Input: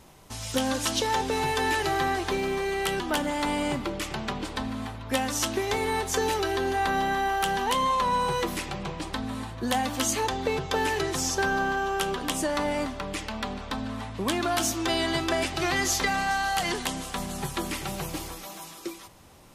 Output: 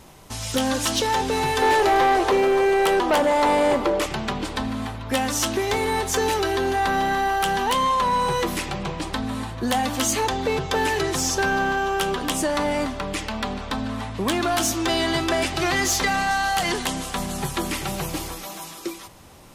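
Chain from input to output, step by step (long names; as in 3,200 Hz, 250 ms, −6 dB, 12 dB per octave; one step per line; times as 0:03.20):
0:01.62–0:04.06: octave-band graphic EQ 125/500/1,000 Hz −11/+12/+6 dB
soft clipping −19.5 dBFS, distortion −13 dB
level +5.5 dB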